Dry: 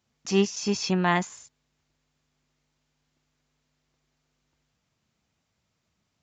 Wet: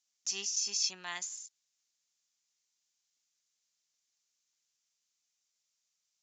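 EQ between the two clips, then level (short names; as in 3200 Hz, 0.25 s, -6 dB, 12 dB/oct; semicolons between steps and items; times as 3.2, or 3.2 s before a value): band-pass 6400 Hz, Q 2.1; +3.5 dB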